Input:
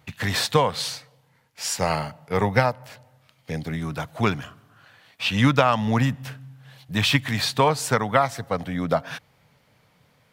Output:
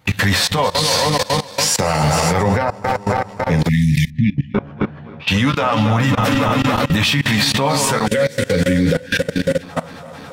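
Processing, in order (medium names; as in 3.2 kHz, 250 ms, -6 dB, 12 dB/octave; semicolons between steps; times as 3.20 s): backward echo that repeats 138 ms, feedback 83%, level -14 dB; compression 4:1, threshold -31 dBFS, peak gain reduction 15.5 dB; reverberation RT60 0.50 s, pre-delay 3 ms, DRR 12 dB; flange 0.33 Hz, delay 9.8 ms, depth 5 ms, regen +35%; 8.06–9.63 s: time-frequency box 560–1400 Hz -20 dB; 4.10–5.28 s: tape spacing loss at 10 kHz 41 dB; 3.69–4.54 s: spectral selection erased 290–1700 Hz; 2.43–3.59 s: treble shelf 3.2 kHz -7.5 dB; level held to a coarse grid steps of 21 dB; loudness maximiser +34 dB; trim -5.5 dB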